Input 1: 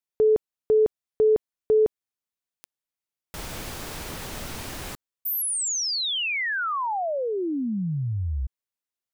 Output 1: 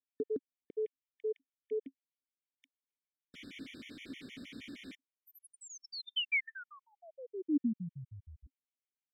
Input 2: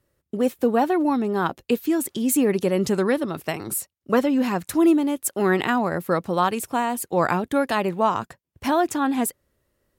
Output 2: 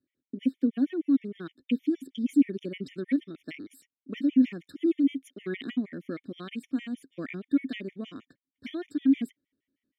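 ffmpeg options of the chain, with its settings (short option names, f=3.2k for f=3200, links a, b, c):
-filter_complex "[0:a]asplit=3[a][b][c];[a]bandpass=f=270:t=q:w=8,volume=0dB[d];[b]bandpass=f=2.29k:t=q:w=8,volume=-6dB[e];[c]bandpass=f=3.01k:t=q:w=8,volume=-9dB[f];[d][e][f]amix=inputs=3:normalize=0,afftfilt=real='re*gt(sin(2*PI*6.4*pts/sr)*(1-2*mod(floor(b*sr/1024/1800),2)),0)':imag='im*gt(sin(2*PI*6.4*pts/sr)*(1-2*mod(floor(b*sr/1024/1800),2)),0)':win_size=1024:overlap=0.75,volume=4.5dB"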